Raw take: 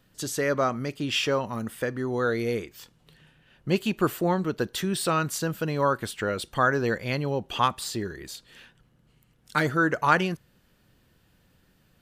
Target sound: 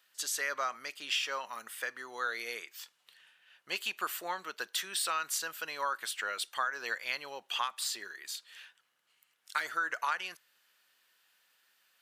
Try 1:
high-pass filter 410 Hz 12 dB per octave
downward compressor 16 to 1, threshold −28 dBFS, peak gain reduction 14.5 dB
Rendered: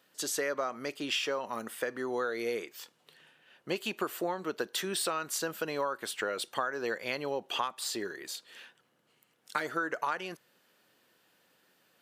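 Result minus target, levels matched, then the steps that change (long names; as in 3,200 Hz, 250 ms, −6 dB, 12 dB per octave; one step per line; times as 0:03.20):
500 Hz band +10.0 dB
change: high-pass filter 1,300 Hz 12 dB per octave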